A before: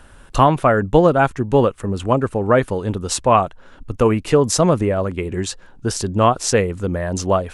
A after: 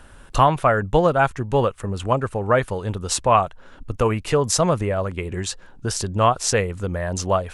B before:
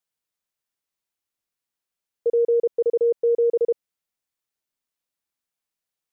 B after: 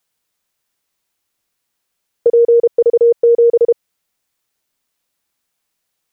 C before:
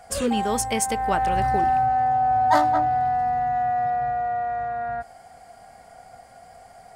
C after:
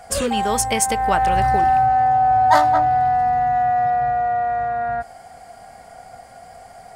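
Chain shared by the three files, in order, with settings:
dynamic equaliser 280 Hz, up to −8 dB, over −31 dBFS, Q 0.97
normalise the peak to −2 dBFS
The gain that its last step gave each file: −1.0, +13.5, +5.5 decibels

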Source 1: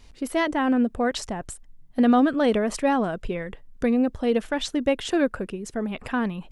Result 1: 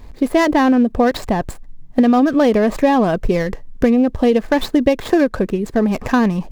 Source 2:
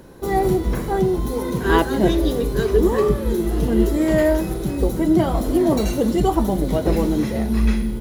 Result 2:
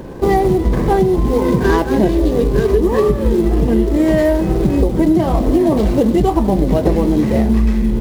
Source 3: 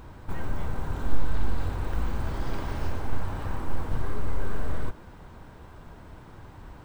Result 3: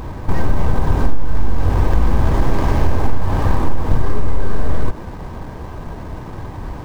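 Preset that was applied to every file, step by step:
running median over 15 samples
downward compressor 10 to 1, threshold −23 dBFS
notch filter 1,400 Hz, Q 7.5
normalise the peak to −1.5 dBFS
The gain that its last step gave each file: +13.5, +13.5, +17.0 decibels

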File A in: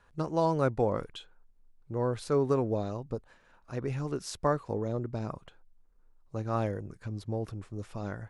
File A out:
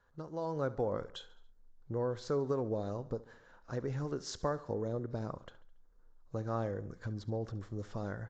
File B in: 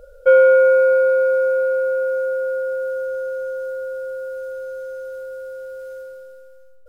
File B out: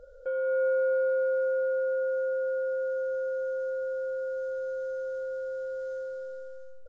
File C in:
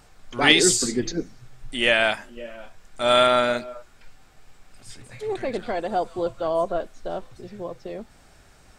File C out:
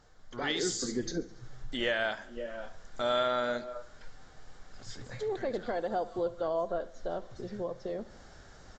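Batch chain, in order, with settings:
thirty-one-band graphic EQ 500 Hz +4 dB, 1,600 Hz +3 dB, 2,500 Hz −11 dB
downward compressor 2 to 1, threshold −37 dBFS
repeating echo 70 ms, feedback 53%, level −18.5 dB
automatic gain control gain up to 9 dB
level −8.5 dB
AAC 48 kbit/s 16,000 Hz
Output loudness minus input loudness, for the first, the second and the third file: −5.5, −12.0, −12.0 LU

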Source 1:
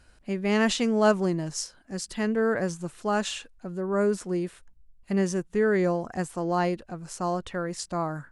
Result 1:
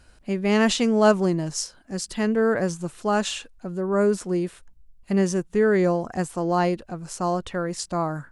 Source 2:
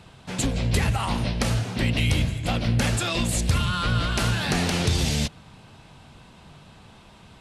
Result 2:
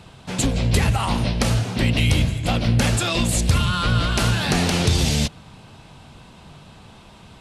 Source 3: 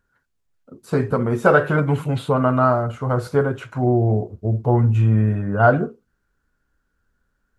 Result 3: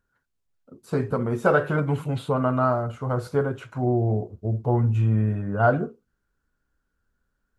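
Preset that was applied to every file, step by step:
parametric band 1,800 Hz −2 dB
normalise the peak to −6 dBFS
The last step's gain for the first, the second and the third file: +4.0, +4.0, −5.0 decibels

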